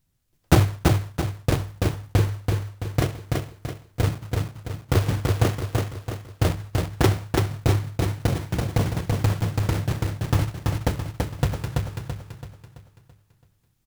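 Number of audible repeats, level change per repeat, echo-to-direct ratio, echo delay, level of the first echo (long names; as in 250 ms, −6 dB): 5, −7.0 dB, −2.0 dB, 333 ms, −3.0 dB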